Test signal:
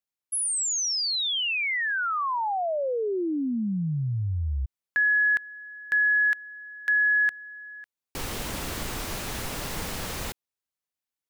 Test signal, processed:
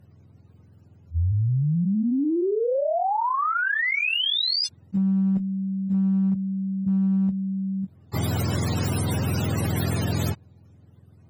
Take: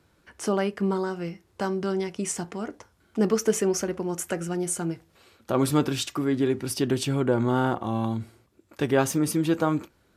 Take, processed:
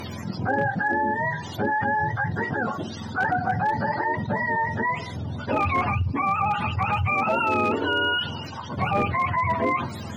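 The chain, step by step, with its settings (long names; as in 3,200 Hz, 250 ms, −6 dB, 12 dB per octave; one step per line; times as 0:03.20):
frequency axis turned over on the octave scale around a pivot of 570 Hz
asymmetric clip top −19 dBFS
envelope flattener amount 70%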